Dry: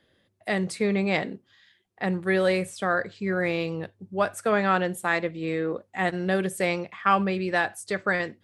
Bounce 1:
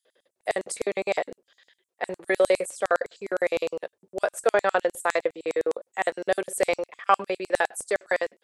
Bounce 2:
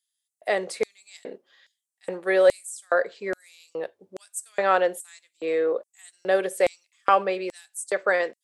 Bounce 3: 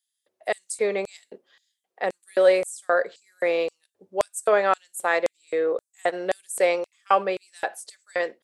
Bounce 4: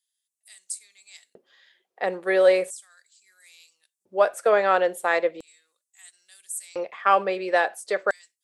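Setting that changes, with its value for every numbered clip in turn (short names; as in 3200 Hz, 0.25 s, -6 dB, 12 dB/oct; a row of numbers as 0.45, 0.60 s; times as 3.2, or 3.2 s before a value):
LFO high-pass, rate: 9.8, 1.2, 1.9, 0.37 Hz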